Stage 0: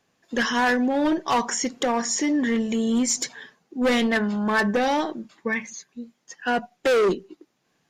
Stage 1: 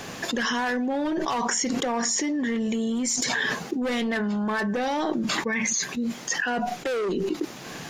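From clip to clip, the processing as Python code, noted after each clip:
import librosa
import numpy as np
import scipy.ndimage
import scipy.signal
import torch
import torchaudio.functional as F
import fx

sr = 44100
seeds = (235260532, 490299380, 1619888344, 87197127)

y = fx.env_flatten(x, sr, amount_pct=100)
y = F.gain(torch.from_numpy(y), -8.0).numpy()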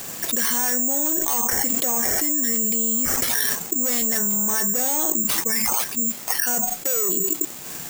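y = (np.kron(x[::6], np.eye(6)[0]) * 6)[:len(x)]
y = F.gain(torch.from_numpy(y), -3.5).numpy()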